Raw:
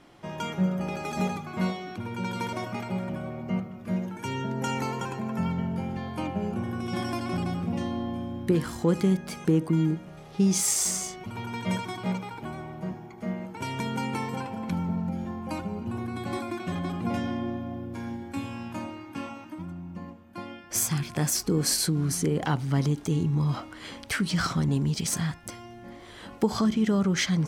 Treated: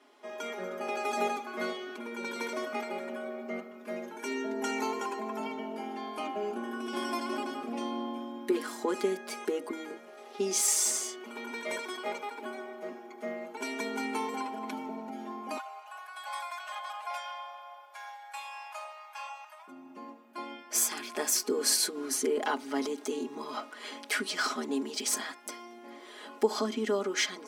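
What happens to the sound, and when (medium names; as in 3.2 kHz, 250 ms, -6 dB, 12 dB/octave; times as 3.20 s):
11.50–12.30 s: high-pass 270 Hz
15.57–19.68 s: steep high-pass 660 Hz 48 dB/octave
whole clip: comb 4.8 ms, depth 87%; level rider gain up to 4.5 dB; elliptic high-pass 260 Hz, stop band 40 dB; trim -6.5 dB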